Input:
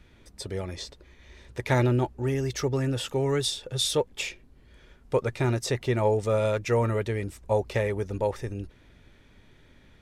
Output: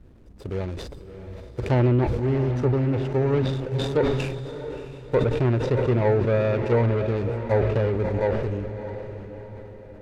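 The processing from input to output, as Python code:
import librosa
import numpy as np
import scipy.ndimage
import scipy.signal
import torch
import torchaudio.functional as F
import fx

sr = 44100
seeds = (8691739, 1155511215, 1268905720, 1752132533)

y = scipy.ndimage.median_filter(x, 41, mode='constant')
y = fx.env_lowpass_down(y, sr, base_hz=2900.0, full_db=-24.0)
y = fx.echo_diffused(y, sr, ms=650, feedback_pct=46, wet_db=-9.5)
y = fx.sustainer(y, sr, db_per_s=35.0)
y = y * 10.0 ** (4.0 / 20.0)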